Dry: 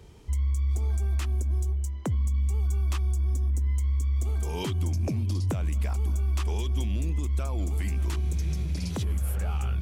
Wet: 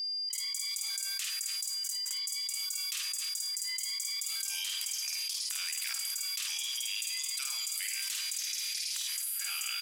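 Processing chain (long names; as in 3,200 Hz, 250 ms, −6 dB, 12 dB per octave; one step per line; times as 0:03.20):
noise gate with hold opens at −26 dBFS
double-tracking delay 50 ms −3.5 dB
steady tone 4,800 Hz −51 dBFS
spectral tilt +2 dB per octave
volume swells 128 ms
Bessel high-pass filter 2,900 Hz, order 4
single-tap delay 272 ms −16.5 dB
on a send at −9 dB: convolution reverb RT60 1.7 s, pre-delay 23 ms
on the sum: envelope flattener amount 100%
level −2.5 dB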